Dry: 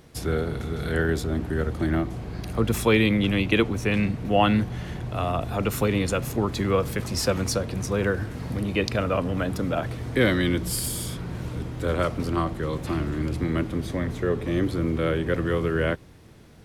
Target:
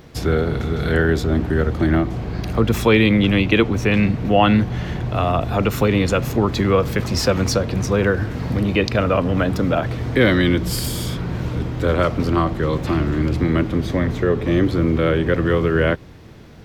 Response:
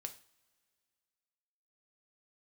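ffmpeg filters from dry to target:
-filter_complex "[0:a]equalizer=frequency=9900:width_type=o:width=0.81:gain=-11.5,asplit=2[link_01][link_02];[link_02]alimiter=limit=-17.5dB:level=0:latency=1:release=194,volume=-2dB[link_03];[link_01][link_03]amix=inputs=2:normalize=0,volume=3dB"

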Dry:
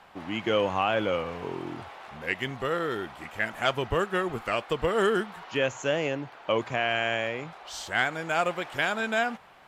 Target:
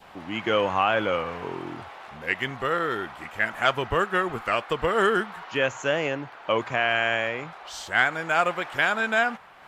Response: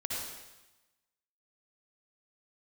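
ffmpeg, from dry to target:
-af "acompressor=mode=upward:threshold=-40dB:ratio=2.5,adynamicequalizer=threshold=0.01:dfrequency=1400:dqfactor=0.79:tfrequency=1400:tqfactor=0.79:attack=5:release=100:ratio=0.375:range=3:mode=boostabove:tftype=bell"

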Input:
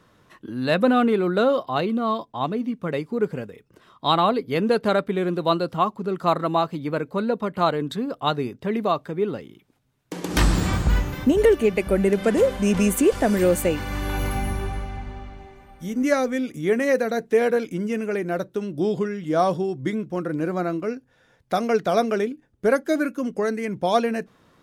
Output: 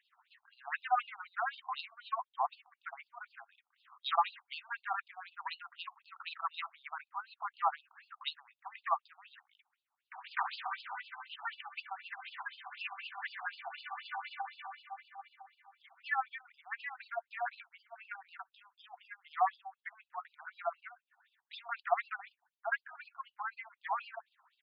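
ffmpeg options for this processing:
ffmpeg -i in.wav -af "tremolo=f=15:d=0.58,highpass=frequency=580:width_type=q:width=4,aresample=16000,asoftclip=type=tanh:threshold=-9.5dB,aresample=44100,afftfilt=real='re*between(b*sr/1024,960*pow(3700/960,0.5+0.5*sin(2*PI*4*pts/sr))/1.41,960*pow(3700/960,0.5+0.5*sin(2*PI*4*pts/sr))*1.41)':imag='im*between(b*sr/1024,960*pow(3700/960,0.5+0.5*sin(2*PI*4*pts/sr))/1.41,960*pow(3700/960,0.5+0.5*sin(2*PI*4*pts/sr))*1.41)':win_size=1024:overlap=0.75,volume=-4dB" out.wav

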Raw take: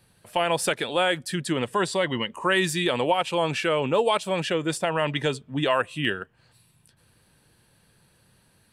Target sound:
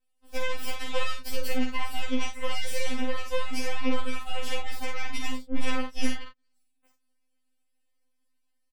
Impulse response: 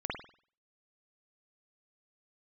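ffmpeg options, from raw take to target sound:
-filter_complex "[0:a]acrossover=split=130[link_01][link_02];[link_01]aeval=exprs='max(val(0),0)':channel_layout=same[link_03];[link_02]acompressor=threshold=-31dB:ratio=16[link_04];[link_03][link_04]amix=inputs=2:normalize=0,aeval=exprs='0.106*(cos(1*acos(clip(val(0)/0.106,-1,1)))-cos(1*PI/2))+0.0422*(cos(6*acos(clip(val(0)/0.106,-1,1)))-cos(6*PI/2))+0.015*(cos(7*acos(clip(val(0)/0.106,-1,1)))-cos(7*PI/2))':channel_layout=same,aecho=1:1:12|51|79:0.631|0.596|0.266,afftfilt=real='re*3.46*eq(mod(b,12),0)':imag='im*3.46*eq(mod(b,12),0)':win_size=2048:overlap=0.75,volume=-1.5dB"

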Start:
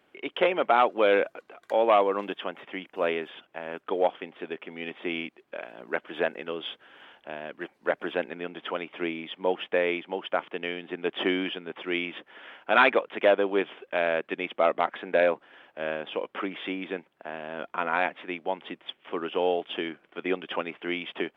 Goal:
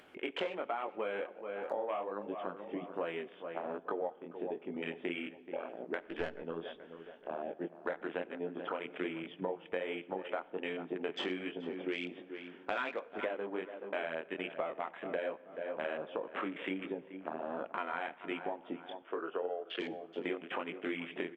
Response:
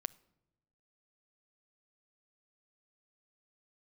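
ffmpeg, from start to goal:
-filter_complex "[0:a]flanger=delay=18:depth=6.8:speed=1.3,afwtdn=0.0112,asplit=2[link_01][link_02];[link_02]adelay=429,lowpass=frequency=1900:poles=1,volume=-18dB,asplit=2[link_03][link_04];[link_04]adelay=429,lowpass=frequency=1900:poles=1,volume=0.32,asplit=2[link_05][link_06];[link_06]adelay=429,lowpass=frequency=1900:poles=1,volume=0.32[link_07];[link_01][link_03][link_05][link_07]amix=inputs=4:normalize=0,asettb=1/sr,asplit=3[link_08][link_09][link_10];[link_08]atrim=end=6.024[link_11];[link_09]atrim=start=6.02:end=6.44,asetpts=PTS-STARTPTS,afade=type=in:duration=0.004:curve=qsin,afade=type=out:start_time=0.416:duration=0.004:curve=qsin,aeval=exprs='0.15*(cos(1*acos(clip(val(0)/0.15,-1,1)))-cos(1*PI/2))+0.0335*(cos(2*acos(clip(val(0)/0.15,-1,1)))-cos(2*PI/2))+0.00668*(cos(6*acos(clip(val(0)/0.15,-1,1)))-cos(6*PI/2))':channel_layout=same[link_12];[link_10]atrim=start=6.436[link_13];[link_11][link_12]acrossfade=duration=0.004:curve1=hsin:curve2=qsin[link_14];[link_14][link_13]acrossfade=duration=0.004:curve1=qsin:curve2=hsin,acompressor=threshold=-40dB:ratio=8[link_15];[1:a]atrim=start_sample=2205,asetrate=26901,aresample=44100[link_16];[link_15][link_16]afir=irnorm=-1:irlink=0,acompressor=mode=upward:threshold=-49dB:ratio=2.5,asettb=1/sr,asplit=3[link_17][link_18][link_19];[link_17]atrim=end=19.024[link_20];[link_18]atrim=start=19.02:end=19.8,asetpts=PTS-STARTPTS,afade=type=in:duration=0.004:curve=qsin,afade=type=out:start_time=0.776:duration=0.004:curve=qsin,highpass=360,equalizer=frequency=420:width_type=q:width=4:gain=4,equalizer=frequency=860:width_type=q:width=4:gain=-6,equalizer=frequency=1400:width_type=q:width=4:gain=8,lowpass=frequency=3400:width=0.5412,lowpass=frequency=3400:width=1.3066[link_21];[link_19]atrim=start=19.796[link_22];[link_20][link_21]acrossfade=duration=0.004:curve1=hsin:curve2=qsin[link_23];[link_23][link_22]acrossfade=duration=0.004:curve1=qsin:curve2=hsin,volume=4.5dB"

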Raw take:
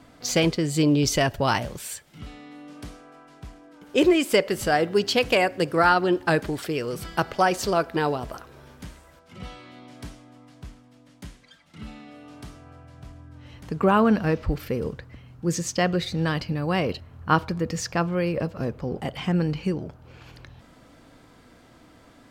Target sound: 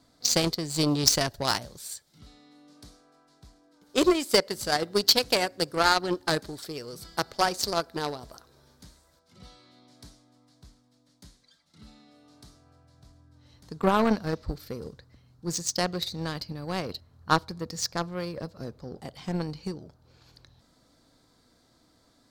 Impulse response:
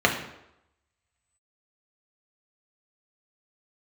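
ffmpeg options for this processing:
-af "highshelf=frequency=3400:width_type=q:width=3:gain=6,aeval=exprs='0.841*(cos(1*acos(clip(val(0)/0.841,-1,1)))-cos(1*PI/2))+0.0841*(cos(3*acos(clip(val(0)/0.841,-1,1)))-cos(3*PI/2))+0.422*(cos(5*acos(clip(val(0)/0.841,-1,1)))-cos(5*PI/2))+0.335*(cos(7*acos(clip(val(0)/0.841,-1,1)))-cos(7*PI/2))':channel_layout=same,volume=-4.5dB"

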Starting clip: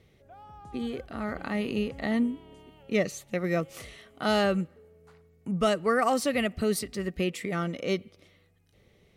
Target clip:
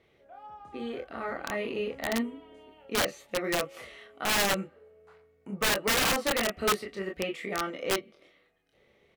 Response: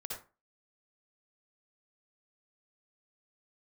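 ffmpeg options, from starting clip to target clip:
-filter_complex "[0:a]bass=frequency=250:gain=-14,treble=frequency=4000:gain=-11,acrossover=split=3600[link_01][link_02];[link_02]acompressor=threshold=-51dB:ratio=4:attack=1:release=60[link_03];[link_01][link_03]amix=inputs=2:normalize=0,asplit=2[link_04][link_05];[link_05]aecho=0:1:26|40:0.668|0.355[link_06];[link_04][link_06]amix=inputs=2:normalize=0,aeval=exprs='(mod(10*val(0)+1,2)-1)/10':channel_layout=same"

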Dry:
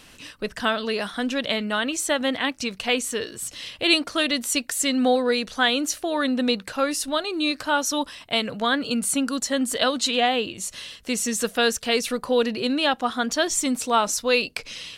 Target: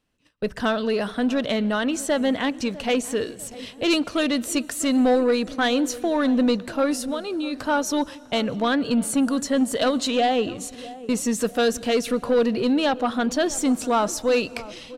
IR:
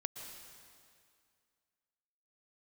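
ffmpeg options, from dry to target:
-filter_complex "[0:a]agate=range=-27dB:threshold=-36dB:ratio=16:detection=peak,tiltshelf=frequency=1100:gain=5,asplit=3[link_01][link_02][link_03];[link_01]afade=type=out:start_time=7:duration=0.02[link_04];[link_02]acompressor=threshold=-26dB:ratio=6,afade=type=in:start_time=7:duration=0.02,afade=type=out:start_time=7.52:duration=0.02[link_05];[link_03]afade=type=in:start_time=7.52:duration=0.02[link_06];[link_04][link_05][link_06]amix=inputs=3:normalize=0,asoftclip=type=tanh:threshold=-14dB,asplit=2[link_07][link_08];[link_08]adelay=650,lowpass=frequency=980:poles=1,volume=-16.5dB,asplit=2[link_09][link_10];[link_10]adelay=650,lowpass=frequency=980:poles=1,volume=0.46,asplit=2[link_11][link_12];[link_12]adelay=650,lowpass=frequency=980:poles=1,volume=0.46,asplit=2[link_13][link_14];[link_14]adelay=650,lowpass=frequency=980:poles=1,volume=0.46[link_15];[link_07][link_09][link_11][link_13][link_15]amix=inputs=5:normalize=0,asplit=2[link_16][link_17];[1:a]atrim=start_sample=2205[link_18];[link_17][link_18]afir=irnorm=-1:irlink=0,volume=-15.5dB[link_19];[link_16][link_19]amix=inputs=2:normalize=0"

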